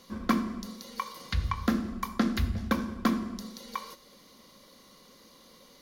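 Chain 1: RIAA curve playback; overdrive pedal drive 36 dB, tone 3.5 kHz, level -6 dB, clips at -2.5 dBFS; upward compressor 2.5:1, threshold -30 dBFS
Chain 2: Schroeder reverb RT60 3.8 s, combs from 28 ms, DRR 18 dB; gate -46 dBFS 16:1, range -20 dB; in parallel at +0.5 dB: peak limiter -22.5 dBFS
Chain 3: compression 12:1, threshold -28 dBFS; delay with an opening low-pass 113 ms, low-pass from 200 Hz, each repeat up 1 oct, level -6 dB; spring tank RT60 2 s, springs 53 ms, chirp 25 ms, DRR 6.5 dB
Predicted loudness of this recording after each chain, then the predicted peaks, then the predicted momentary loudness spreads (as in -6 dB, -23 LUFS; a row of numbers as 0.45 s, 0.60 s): -13.5 LUFS, -27.5 LUFS, -35.5 LUFS; -3.0 dBFS, -10.0 dBFS, -15.5 dBFS; 19 LU, 9 LU, 20 LU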